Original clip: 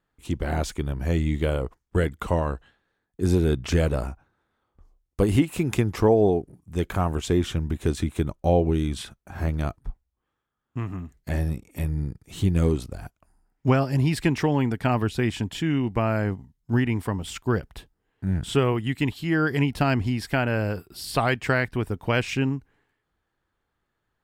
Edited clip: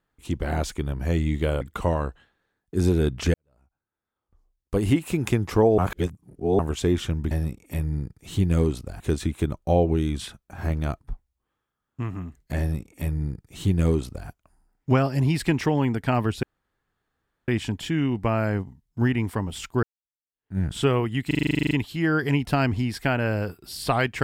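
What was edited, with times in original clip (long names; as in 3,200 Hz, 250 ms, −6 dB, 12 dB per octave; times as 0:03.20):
0:01.61–0:02.07: remove
0:03.80–0:05.46: fade in quadratic
0:06.24–0:07.05: reverse
0:11.36–0:13.05: duplicate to 0:07.77
0:15.20: splice in room tone 1.05 s
0:17.55–0:18.30: fade in exponential
0:18.99: stutter 0.04 s, 12 plays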